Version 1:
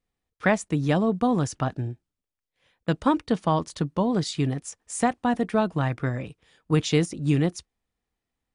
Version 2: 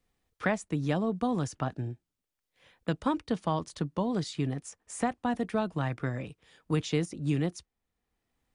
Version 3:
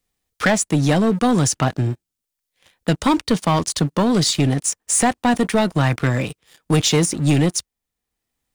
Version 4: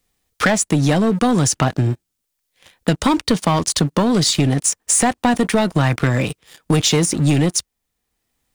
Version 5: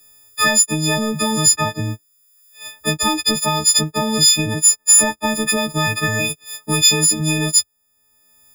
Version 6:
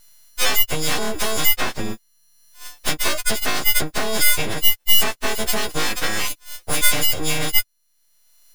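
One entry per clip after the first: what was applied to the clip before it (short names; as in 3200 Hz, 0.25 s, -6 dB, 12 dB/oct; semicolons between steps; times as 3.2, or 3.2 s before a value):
three-band squash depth 40%; gain -6.5 dB
high shelf 3600 Hz +11.5 dB; sample leveller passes 3; gain +3.5 dB
compressor 3:1, threshold -21 dBFS, peak gain reduction 6.5 dB; gain +6.5 dB
frequency quantiser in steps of 6 st; three-band squash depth 40%; gain -5.5 dB
full-wave rectifier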